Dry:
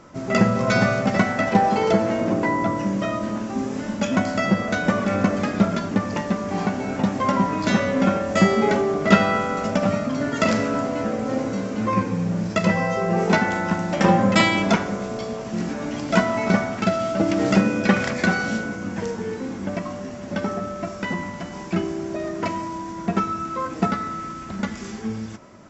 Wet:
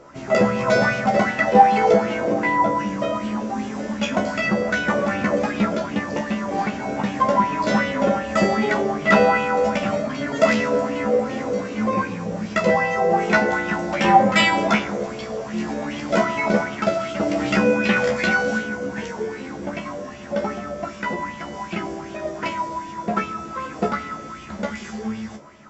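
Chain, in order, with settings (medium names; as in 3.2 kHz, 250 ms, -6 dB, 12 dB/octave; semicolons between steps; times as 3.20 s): feedback comb 71 Hz, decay 0.19 s, harmonics all, mix 100%; de-hum 46.56 Hz, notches 7; in parallel at -8 dB: overload inside the chain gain 20.5 dB; on the sum: sweeping bell 2.6 Hz 480–3000 Hz +11 dB; trim +1.5 dB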